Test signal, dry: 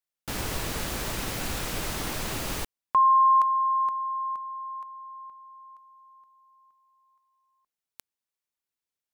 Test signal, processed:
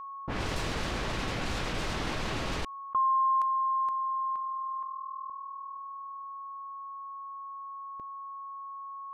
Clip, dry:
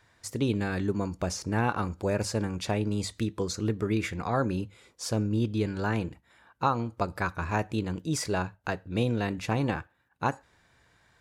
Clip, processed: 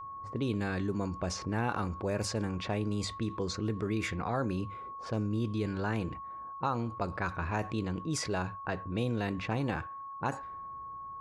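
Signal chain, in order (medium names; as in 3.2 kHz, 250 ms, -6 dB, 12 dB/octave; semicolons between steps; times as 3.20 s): level-controlled noise filter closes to 450 Hz, open at -23.5 dBFS; whistle 1.1 kHz -48 dBFS; level flattener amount 50%; trim -7 dB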